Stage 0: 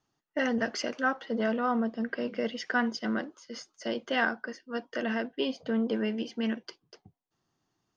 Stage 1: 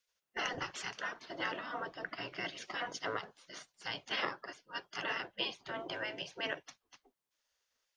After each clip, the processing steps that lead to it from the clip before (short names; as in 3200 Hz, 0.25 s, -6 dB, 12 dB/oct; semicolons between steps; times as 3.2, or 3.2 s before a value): spectral gate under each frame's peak -15 dB weak; gain +3 dB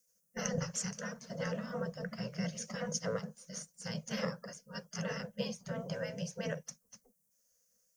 EQ curve 110 Hz 0 dB, 160 Hz +14 dB, 220 Hz +12 dB, 330 Hz -27 dB, 490 Hz +6 dB, 770 Hz -13 dB, 1600 Hz -10 dB, 3700 Hz -17 dB, 6000 Hz +6 dB, 9900 Hz +10 dB; gain +5 dB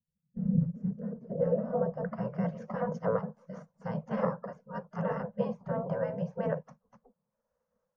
low-pass sweep 140 Hz -> 970 Hz, 0.22–2.09; gain +5 dB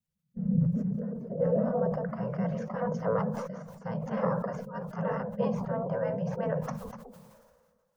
sustainer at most 35 dB/s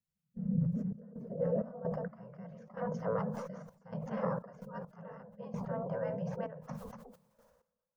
step gate "xxxx.xx.x..." 65 bpm -12 dB; gain -5.5 dB